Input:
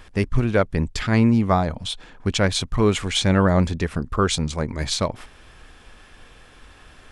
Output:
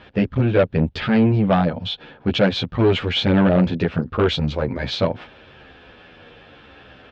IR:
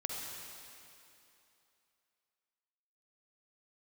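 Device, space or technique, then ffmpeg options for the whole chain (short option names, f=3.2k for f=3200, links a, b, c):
barber-pole flanger into a guitar amplifier: -filter_complex "[0:a]asplit=2[a][b];[b]adelay=10.9,afreqshift=-0.91[c];[a][c]amix=inputs=2:normalize=1,asoftclip=type=tanh:threshold=-19dB,highpass=100,equalizer=f=520:t=q:w=4:g=4,equalizer=f=1.1k:t=q:w=4:g=-7,equalizer=f=2k:t=q:w=4:g=-5,lowpass=f=3.6k:w=0.5412,lowpass=f=3.6k:w=1.3066,volume=9dB"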